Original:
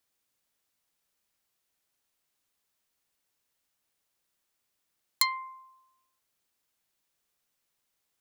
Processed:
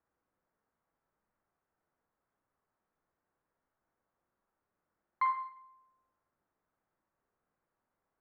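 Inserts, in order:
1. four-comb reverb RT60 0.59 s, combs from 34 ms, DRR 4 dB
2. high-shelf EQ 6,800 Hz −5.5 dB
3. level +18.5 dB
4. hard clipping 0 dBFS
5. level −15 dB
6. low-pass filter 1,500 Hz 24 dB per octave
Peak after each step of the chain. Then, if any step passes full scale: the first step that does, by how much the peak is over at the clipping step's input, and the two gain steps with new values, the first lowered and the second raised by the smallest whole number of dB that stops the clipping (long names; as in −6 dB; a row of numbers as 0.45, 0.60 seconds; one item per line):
−6.5, −10.0, +8.5, 0.0, −15.0, −21.5 dBFS
step 3, 8.5 dB
step 3 +9.5 dB, step 5 −6 dB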